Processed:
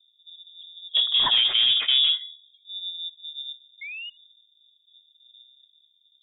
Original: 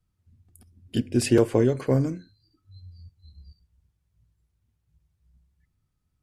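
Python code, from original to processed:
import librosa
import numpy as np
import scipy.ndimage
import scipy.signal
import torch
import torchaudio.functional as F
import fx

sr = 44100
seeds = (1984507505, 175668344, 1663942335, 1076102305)

p1 = fx.env_lowpass(x, sr, base_hz=330.0, full_db=-16.5)
p2 = fx.hum_notches(p1, sr, base_hz=60, count=7)
p3 = fx.over_compress(p2, sr, threshold_db=-26.0, ratio=-1.0)
p4 = p2 + (p3 * 10.0 ** (3.0 / 20.0))
p5 = 10.0 ** (-15.0 / 20.0) * np.tanh(p4 / 10.0 ** (-15.0 / 20.0))
p6 = fx.spec_paint(p5, sr, seeds[0], shape='fall', start_s=3.81, length_s=0.29, low_hz=670.0, high_hz=1500.0, level_db=-36.0)
p7 = p6 + fx.echo_single(p6, sr, ms=72, db=-23.0, dry=0)
y = fx.freq_invert(p7, sr, carrier_hz=3600)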